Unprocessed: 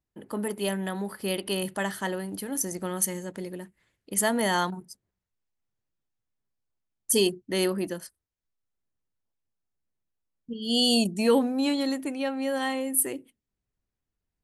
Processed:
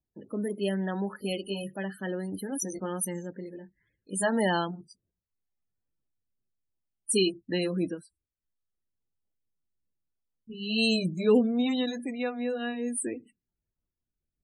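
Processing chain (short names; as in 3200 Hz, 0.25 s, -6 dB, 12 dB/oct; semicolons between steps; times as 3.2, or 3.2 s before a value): gliding pitch shift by -2 st starting unshifted; loudest bins only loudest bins 32; rotary speaker horn 0.65 Hz; gain +1.5 dB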